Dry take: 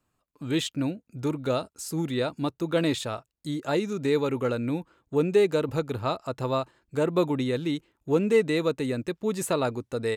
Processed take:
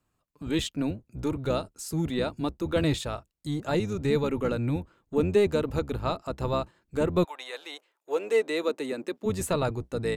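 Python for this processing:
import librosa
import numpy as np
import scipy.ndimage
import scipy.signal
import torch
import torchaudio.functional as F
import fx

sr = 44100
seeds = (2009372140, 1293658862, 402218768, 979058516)

y = fx.octave_divider(x, sr, octaves=1, level_db=-2.0)
y = fx.highpass(y, sr, hz=fx.line((7.23, 790.0), (9.25, 210.0)), slope=24, at=(7.23, 9.25), fade=0.02)
y = y * 10.0 ** (-1.5 / 20.0)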